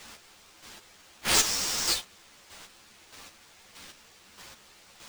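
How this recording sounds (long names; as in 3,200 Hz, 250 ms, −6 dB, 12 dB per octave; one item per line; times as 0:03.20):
a quantiser's noise floor 8 bits, dither triangular
chopped level 1.6 Hz, depth 60%, duty 25%
aliases and images of a low sample rate 13,000 Hz, jitter 20%
a shimmering, thickened sound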